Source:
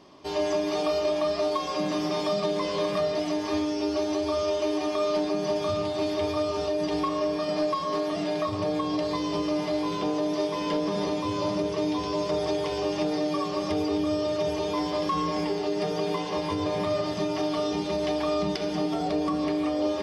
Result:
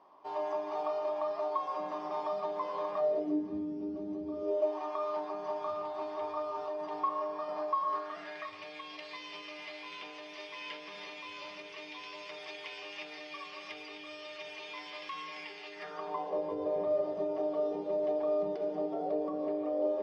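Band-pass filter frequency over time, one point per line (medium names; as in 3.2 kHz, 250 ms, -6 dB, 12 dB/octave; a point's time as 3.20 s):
band-pass filter, Q 2.8
2.96 s 910 Hz
3.50 s 200 Hz
4.26 s 200 Hz
4.79 s 980 Hz
7.78 s 980 Hz
8.63 s 2.4 kHz
15.69 s 2.4 kHz
16.37 s 530 Hz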